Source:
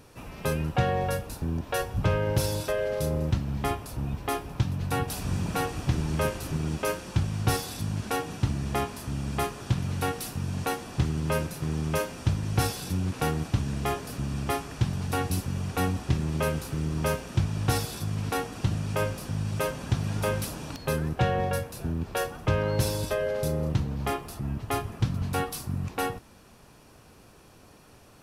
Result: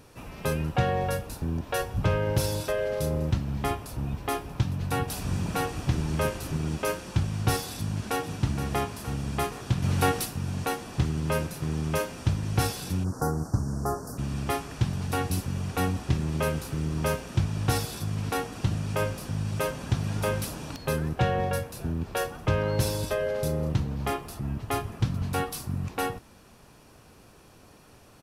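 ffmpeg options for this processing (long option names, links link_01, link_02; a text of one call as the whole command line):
ffmpeg -i in.wav -filter_complex "[0:a]asplit=2[link_01][link_02];[link_02]afade=type=in:start_time=7.76:duration=0.01,afade=type=out:start_time=8.37:duration=0.01,aecho=0:1:470|940|1410|1880|2350|2820|3290|3760|4230:0.354813|0.230629|0.149909|0.0974406|0.0633364|0.0411687|0.0267596|0.0173938|0.0113059[link_03];[link_01][link_03]amix=inputs=2:normalize=0,asplit=3[link_04][link_05][link_06];[link_04]afade=type=out:start_time=9.82:duration=0.02[link_07];[link_05]acontrast=28,afade=type=in:start_time=9.82:duration=0.02,afade=type=out:start_time=10.24:duration=0.02[link_08];[link_06]afade=type=in:start_time=10.24:duration=0.02[link_09];[link_07][link_08][link_09]amix=inputs=3:normalize=0,asplit=3[link_10][link_11][link_12];[link_10]afade=type=out:start_time=13.03:duration=0.02[link_13];[link_11]asuperstop=centerf=2800:order=8:qfactor=0.77,afade=type=in:start_time=13.03:duration=0.02,afade=type=out:start_time=14.17:duration=0.02[link_14];[link_12]afade=type=in:start_time=14.17:duration=0.02[link_15];[link_13][link_14][link_15]amix=inputs=3:normalize=0" out.wav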